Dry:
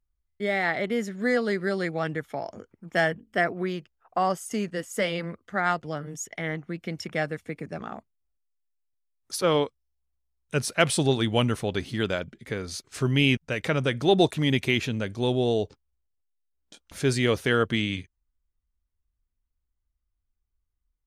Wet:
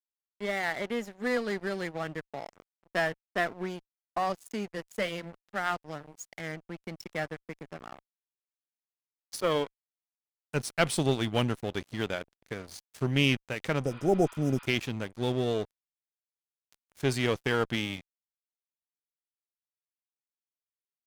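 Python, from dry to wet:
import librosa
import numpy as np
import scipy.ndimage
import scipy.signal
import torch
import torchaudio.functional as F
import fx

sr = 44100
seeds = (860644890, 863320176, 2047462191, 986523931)

y = np.sign(x) * np.maximum(np.abs(x) - 10.0 ** (-36.5 / 20.0), 0.0)
y = fx.tube_stage(y, sr, drive_db=12.0, bias=0.6)
y = fx.spec_repair(y, sr, seeds[0], start_s=13.88, length_s=0.76, low_hz=830.0, high_hz=4900.0, source='before')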